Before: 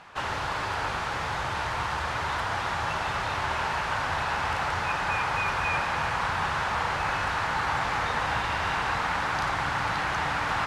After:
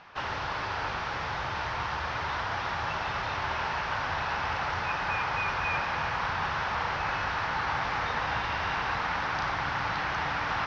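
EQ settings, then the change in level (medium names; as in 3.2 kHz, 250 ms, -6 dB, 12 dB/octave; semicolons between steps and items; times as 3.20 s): elliptic low-pass 5.7 kHz, stop band 70 dB; -2.0 dB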